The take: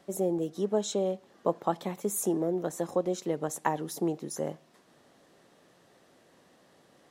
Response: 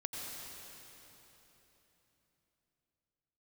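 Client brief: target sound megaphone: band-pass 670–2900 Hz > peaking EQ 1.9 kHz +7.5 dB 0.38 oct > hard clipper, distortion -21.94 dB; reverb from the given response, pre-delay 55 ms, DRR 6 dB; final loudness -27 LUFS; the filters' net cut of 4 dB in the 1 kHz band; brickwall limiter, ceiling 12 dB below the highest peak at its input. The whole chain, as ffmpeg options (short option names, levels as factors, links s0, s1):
-filter_complex "[0:a]equalizer=f=1000:t=o:g=-3.5,alimiter=limit=0.0668:level=0:latency=1,asplit=2[s0][s1];[1:a]atrim=start_sample=2205,adelay=55[s2];[s1][s2]afir=irnorm=-1:irlink=0,volume=0.447[s3];[s0][s3]amix=inputs=2:normalize=0,highpass=670,lowpass=2900,equalizer=f=1900:t=o:w=0.38:g=7.5,asoftclip=type=hard:threshold=0.0282,volume=5.62"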